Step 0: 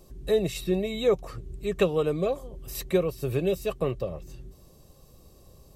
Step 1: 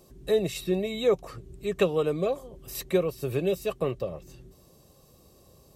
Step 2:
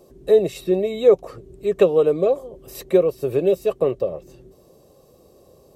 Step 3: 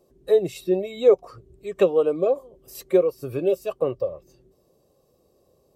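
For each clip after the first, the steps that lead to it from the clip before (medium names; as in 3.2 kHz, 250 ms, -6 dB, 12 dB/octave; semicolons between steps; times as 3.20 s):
high-pass 120 Hz 6 dB/octave
peaking EQ 480 Hz +11.5 dB 1.8 oct; trim -1.5 dB
spectral noise reduction 9 dB; trim -2 dB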